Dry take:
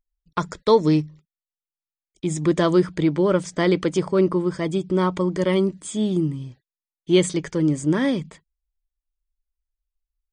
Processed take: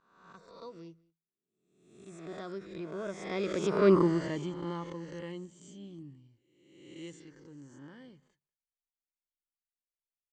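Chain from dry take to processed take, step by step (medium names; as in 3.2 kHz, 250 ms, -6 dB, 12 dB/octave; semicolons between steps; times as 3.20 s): reverse spectral sustain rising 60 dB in 0.97 s; Doppler pass-by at 3.95 s, 26 m/s, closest 3.6 m; low-pass 7.7 kHz 24 dB/octave; echo from a far wall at 33 m, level -25 dB; endings held to a fixed fall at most 270 dB/s; trim -3.5 dB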